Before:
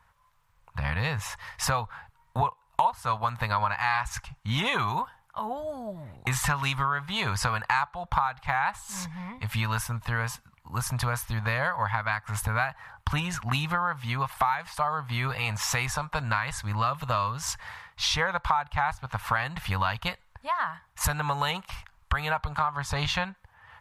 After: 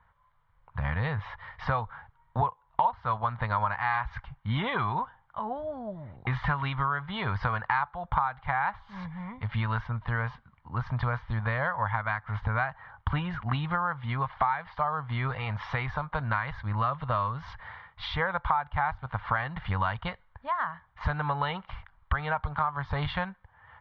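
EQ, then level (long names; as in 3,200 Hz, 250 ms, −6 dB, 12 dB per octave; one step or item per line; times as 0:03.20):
low-pass filter 3,800 Hz 24 dB per octave
high-frequency loss of the air 270 metres
notch filter 2,600 Hz, Q 5.6
0.0 dB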